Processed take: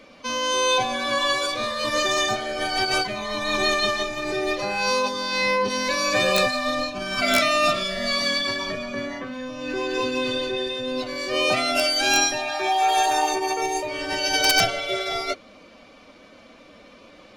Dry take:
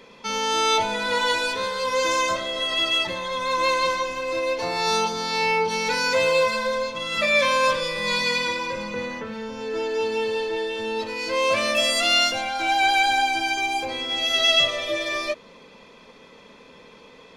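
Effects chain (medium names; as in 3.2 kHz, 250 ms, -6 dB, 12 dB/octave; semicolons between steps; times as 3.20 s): formant-preserving pitch shift +2.5 st; integer overflow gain 8.5 dB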